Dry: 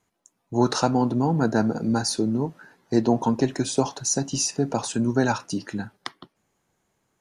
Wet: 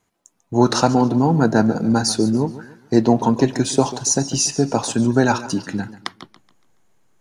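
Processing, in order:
in parallel at −11 dB: slack as between gear wheels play −36 dBFS
on the sum: feedback echo with a swinging delay time 141 ms, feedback 36%, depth 114 cents, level −15.5 dB
level +3.5 dB

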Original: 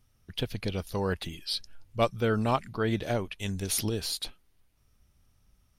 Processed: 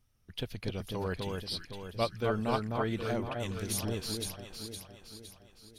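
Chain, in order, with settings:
delay that swaps between a low-pass and a high-pass 256 ms, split 1,600 Hz, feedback 69%, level −3 dB
level −5.5 dB

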